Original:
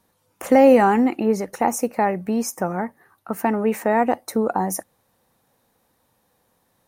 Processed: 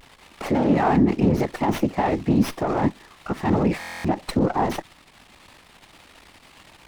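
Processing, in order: tracing distortion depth 0.057 ms; hard clip -7 dBFS, distortion -22 dB; resonant low shelf 180 Hz -12 dB, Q 3; crackle 390/s -35 dBFS; bell 460 Hz -8.5 dB 0.56 oct; notch 1500 Hz, Q 7; limiter -18.5 dBFS, peak gain reduction 16 dB; LPF 6600 Hz 24 dB/oct; whisperiser; vibrato 0.7 Hz 47 cents; stuck buffer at 3.79, samples 1024, times 10; running maximum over 5 samples; gain +6 dB

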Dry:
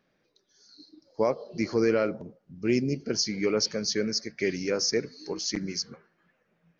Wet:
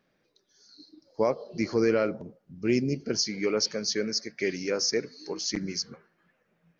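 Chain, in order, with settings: 3.19–5.41 low shelf 120 Hz -11 dB

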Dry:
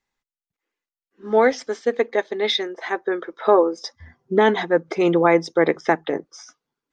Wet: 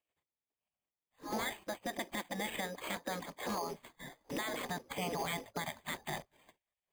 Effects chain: block floating point 5-bit; LPF 2600 Hz 12 dB/oct; spectral gate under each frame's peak -15 dB weak; bell 1400 Hz -12.5 dB 0.44 oct; compressor, threshold -32 dBFS, peak gain reduction 7 dB; limiter -33 dBFS, peak gain reduction 11 dB; careless resampling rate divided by 8×, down filtered, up hold; 2.54–4.88 three-band squash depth 40%; gain +5 dB

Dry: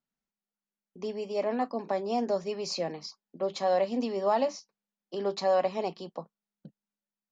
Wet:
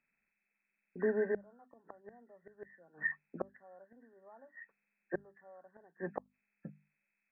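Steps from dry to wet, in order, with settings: nonlinear frequency compression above 1300 Hz 4:1; flipped gate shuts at -26 dBFS, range -34 dB; notches 50/100/150/200/250 Hz; gain +3 dB

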